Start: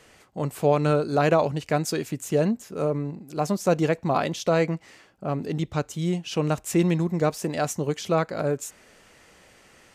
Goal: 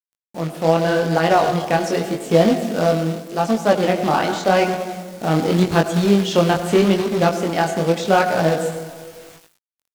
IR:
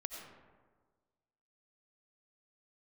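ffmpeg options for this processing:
-filter_complex "[0:a]agate=range=0.0224:threshold=0.00631:ratio=3:detection=peak,asplit=2[s0][s1];[1:a]atrim=start_sample=2205,highshelf=f=3700:g=-7[s2];[s1][s2]afir=irnorm=-1:irlink=0,volume=1.5[s3];[s0][s3]amix=inputs=2:normalize=0,acrusher=bits=3:mode=log:mix=0:aa=0.000001,asetrate=49501,aresample=44100,atempo=0.890899,bass=f=250:g=-2,treble=f=4000:g=6,acrusher=bits=7:mix=0:aa=0.000001,acrossover=split=4900[s4][s5];[s5]acompressor=threshold=0.00891:ratio=4:attack=1:release=60[s6];[s4][s6]amix=inputs=2:normalize=0,flanger=delay=18:depth=7.6:speed=0.84,dynaudnorm=f=150:g=9:m=4.47,volume=0.891"

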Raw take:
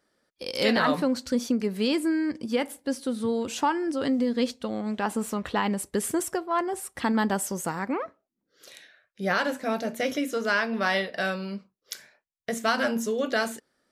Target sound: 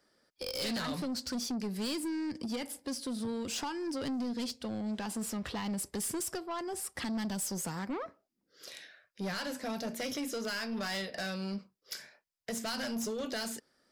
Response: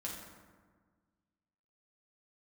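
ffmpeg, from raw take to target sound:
-filter_complex "[0:a]equalizer=f=5000:t=o:w=0.22:g=8,acrossover=split=200|3000[s0][s1][s2];[s1]acompressor=threshold=0.0224:ratio=6[s3];[s0][s3][s2]amix=inputs=3:normalize=0,aeval=exprs='(tanh(35.5*val(0)+0.05)-tanh(0.05))/35.5':c=same"

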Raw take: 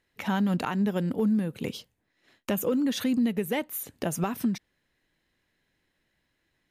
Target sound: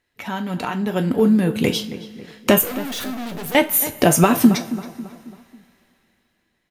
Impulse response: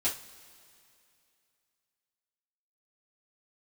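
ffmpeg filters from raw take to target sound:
-filter_complex "[0:a]dynaudnorm=f=260:g=9:m=5.62,asettb=1/sr,asplit=3[s0][s1][s2];[s0]atrim=end=2.614[s3];[s1]atrim=start=2.61:end=3.55,asetpts=PTS-STARTPTS,afade=t=in:d=0.004:c=qsin,afade=t=out:st=0.936:d=0.004:c=qsin,aeval=exprs='(tanh(31.6*val(0)+0.45)-tanh(0.45))/31.6':c=same[s4];[s2]atrim=start=3.546[s5];[s3][s4]acrossfade=d=0.004:c1=hsin:c2=qsin[s6];[s6][s5]acrossfade=d=0.004:c1=qsin:c2=hsin,asplit=2[s7][s8];[s8]adelay=273,lowpass=f=2200:p=1,volume=0.2,asplit=2[s9][s10];[s10]adelay=273,lowpass=f=2200:p=1,volume=0.47,asplit=2[s11][s12];[s12]adelay=273,lowpass=f=2200:p=1,volume=0.47,asplit=2[s13][s14];[s14]adelay=273,lowpass=f=2200:p=1,volume=0.47[s15];[s7][s9][s11][s13][s15]amix=inputs=5:normalize=0,asplit=2[s16][s17];[1:a]atrim=start_sample=2205,lowshelf=f=280:g=-10[s18];[s17][s18]afir=irnorm=-1:irlink=0,volume=0.398[s19];[s16][s19]amix=inputs=2:normalize=0,volume=0.891"

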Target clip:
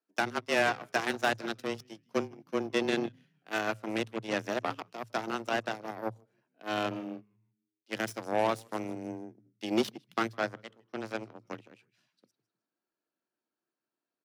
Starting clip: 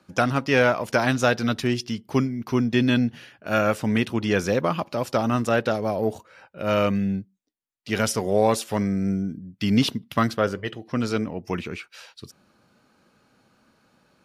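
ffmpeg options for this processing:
-filter_complex "[0:a]asplit=5[s0][s1][s2][s3][s4];[s1]adelay=155,afreqshift=-100,volume=0.178[s5];[s2]adelay=310,afreqshift=-200,volume=0.075[s6];[s3]adelay=465,afreqshift=-300,volume=0.0313[s7];[s4]adelay=620,afreqshift=-400,volume=0.0132[s8];[s0][s5][s6][s7][s8]amix=inputs=5:normalize=0,aeval=exprs='0.473*(cos(1*acos(clip(val(0)/0.473,-1,1)))-cos(1*PI/2))+0.0075*(cos(3*acos(clip(val(0)/0.473,-1,1)))-cos(3*PI/2))+0.00376*(cos(4*acos(clip(val(0)/0.473,-1,1)))-cos(4*PI/2))+0.0596*(cos(7*acos(clip(val(0)/0.473,-1,1)))-cos(7*PI/2))':c=same,afreqshift=110,volume=0.422"

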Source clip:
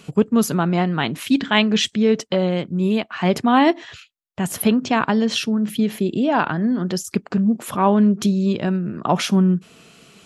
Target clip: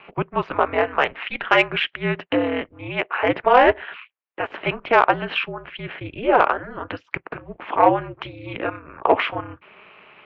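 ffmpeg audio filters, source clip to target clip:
-af "highpass=f=590:t=q:w=0.5412,highpass=f=590:t=q:w=1.307,lowpass=f=2800:t=q:w=0.5176,lowpass=f=2800:t=q:w=0.7071,lowpass=f=2800:t=q:w=1.932,afreqshift=-160,aeval=exprs='val(0)*sin(2*PI*110*n/s)':c=same,acontrast=77,volume=1.26"

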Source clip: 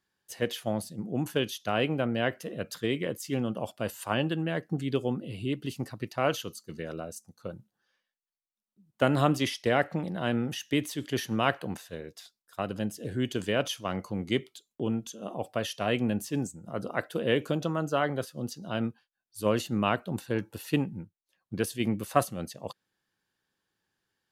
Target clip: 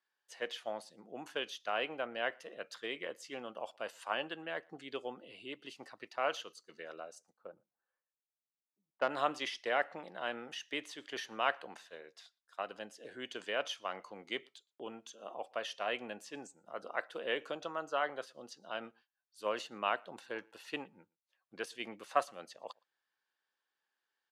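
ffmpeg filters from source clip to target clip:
-filter_complex "[0:a]asplit=3[s0][s1][s2];[s0]afade=t=out:st=7.32:d=0.02[s3];[s1]adynamicsmooth=sensitivity=1:basefreq=1100,afade=t=in:st=7.32:d=0.02,afade=t=out:st=9.09:d=0.02[s4];[s2]afade=t=in:st=9.09:d=0.02[s5];[s3][s4][s5]amix=inputs=3:normalize=0,highpass=670,lowpass=8000,aemphasis=mode=reproduction:type=cd,asplit=2[s6][s7];[s7]adelay=116.6,volume=0.0355,highshelf=f=4000:g=-2.62[s8];[s6][s8]amix=inputs=2:normalize=0,volume=0.668"

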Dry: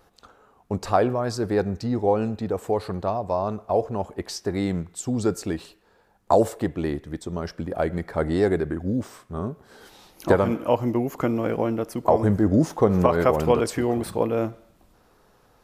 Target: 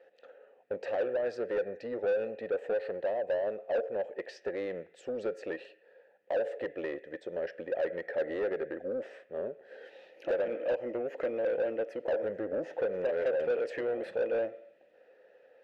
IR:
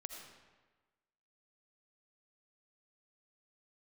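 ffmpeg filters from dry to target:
-filter_complex "[0:a]acompressor=threshold=0.0794:ratio=4,asplit=3[s0][s1][s2];[s0]bandpass=f=530:t=q:w=8,volume=1[s3];[s1]bandpass=f=1840:t=q:w=8,volume=0.501[s4];[s2]bandpass=f=2480:t=q:w=8,volume=0.355[s5];[s3][s4][s5]amix=inputs=3:normalize=0,asplit=2[s6][s7];[s7]highpass=f=720:p=1,volume=10,asoftclip=type=tanh:threshold=0.0794[s8];[s6][s8]amix=inputs=2:normalize=0,lowpass=f=1500:p=1,volume=0.501"

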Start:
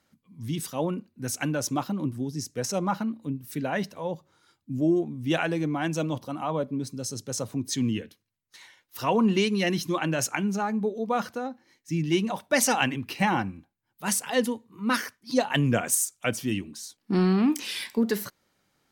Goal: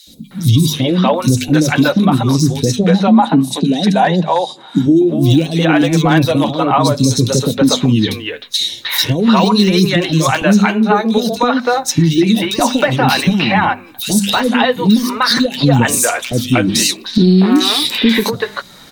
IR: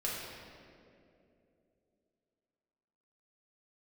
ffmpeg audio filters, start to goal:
-filter_complex "[0:a]deesser=0.9,equalizer=f=3800:w=5.5:g=15,bandreject=f=50:t=h:w=6,bandreject=f=100:t=h:w=6,bandreject=f=150:t=h:w=6,bandreject=f=200:t=h:w=6,bandreject=f=250:t=h:w=6,acompressor=threshold=0.0141:ratio=12,flanger=delay=3.7:depth=6.2:regen=-34:speed=0.53:shape=triangular,aeval=exprs='clip(val(0),-1,0.0178)':c=same,asplit=3[s0][s1][s2];[s0]afade=t=out:st=2.76:d=0.02[s3];[s1]highpass=f=170:w=0.5412,highpass=f=170:w=1.3066,equalizer=f=180:t=q:w=4:g=6,equalizer=f=510:t=q:w=4:g=-4,equalizer=f=760:t=q:w=4:g=7,equalizer=f=1300:t=q:w=4:g=-9,equalizer=f=2200:t=q:w=4:g=-6,equalizer=f=5300:t=q:w=4:g=-3,lowpass=f=9900:w=0.5412,lowpass=f=9900:w=1.3066,afade=t=in:st=2.76:d=0.02,afade=t=out:st=4.79:d=0.02[s4];[s2]afade=t=in:st=4.79:d=0.02[s5];[s3][s4][s5]amix=inputs=3:normalize=0,acrossover=split=450|3200[s6][s7][s8];[s6]adelay=70[s9];[s7]adelay=310[s10];[s9][s10][s8]amix=inputs=3:normalize=0,alimiter=level_in=59.6:limit=0.891:release=50:level=0:latency=1,volume=0.891"

